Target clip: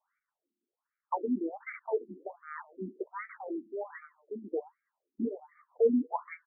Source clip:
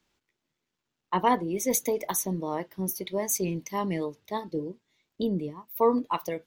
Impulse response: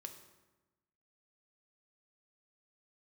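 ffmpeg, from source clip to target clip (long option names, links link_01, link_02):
-filter_complex "[0:a]asplit=2[link_01][link_02];[link_02]adelay=145.8,volume=-27dB,highshelf=frequency=4000:gain=-3.28[link_03];[link_01][link_03]amix=inputs=2:normalize=0,aeval=exprs='0.299*(cos(1*acos(clip(val(0)/0.299,-1,1)))-cos(1*PI/2))+0.00841*(cos(5*acos(clip(val(0)/0.299,-1,1)))-cos(5*PI/2))+0.0266*(cos(8*acos(clip(val(0)/0.299,-1,1)))-cos(8*PI/2))':channel_layout=same,afftfilt=real='re*between(b*sr/1024,270*pow(1700/270,0.5+0.5*sin(2*PI*1.3*pts/sr))/1.41,270*pow(1700/270,0.5+0.5*sin(2*PI*1.3*pts/sr))*1.41)':imag='im*between(b*sr/1024,270*pow(1700/270,0.5+0.5*sin(2*PI*1.3*pts/sr))/1.41,270*pow(1700/270,0.5+0.5*sin(2*PI*1.3*pts/sr))*1.41)':win_size=1024:overlap=0.75"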